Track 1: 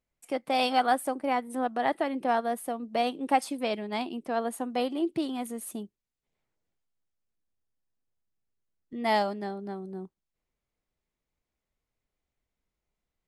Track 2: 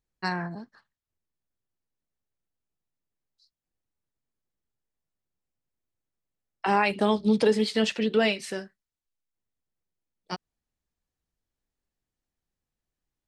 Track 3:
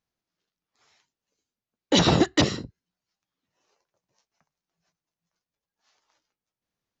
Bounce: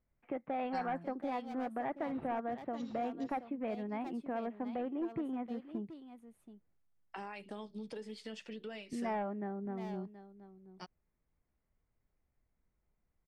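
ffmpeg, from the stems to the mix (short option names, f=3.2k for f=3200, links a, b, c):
-filter_complex "[0:a]bass=f=250:g=6,treble=f=4k:g=-14,asoftclip=type=hard:threshold=-22.5dB,volume=0.5dB,asplit=3[a][b][c];[b]volume=-22dB[d];[1:a]bandreject=f=4k:w=14,acompressor=threshold=-29dB:ratio=4,adelay=500,volume=-14dB[e];[2:a]adelay=100,volume=-17.5dB,asplit=2[f][g];[g]volume=-20.5dB[h];[c]apad=whole_len=313137[i];[f][i]sidechaincompress=threshold=-32dB:ratio=4:attack=16:release=542[j];[a][j]amix=inputs=2:normalize=0,lowpass=f=2.3k:w=0.5412,lowpass=f=2.3k:w=1.3066,acompressor=threshold=-43dB:ratio=2,volume=0dB[k];[d][h]amix=inputs=2:normalize=0,aecho=0:1:726:1[l];[e][k][l]amix=inputs=3:normalize=0"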